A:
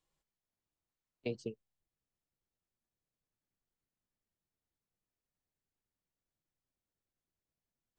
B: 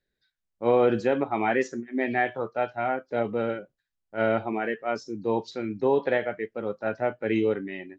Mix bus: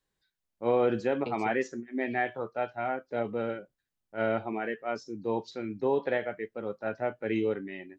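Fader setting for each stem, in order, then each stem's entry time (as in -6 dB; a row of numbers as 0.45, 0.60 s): 0.0, -4.5 dB; 0.00, 0.00 s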